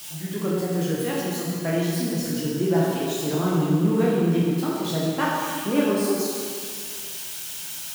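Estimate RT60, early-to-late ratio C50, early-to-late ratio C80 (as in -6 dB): 2.1 s, -2.0 dB, 0.0 dB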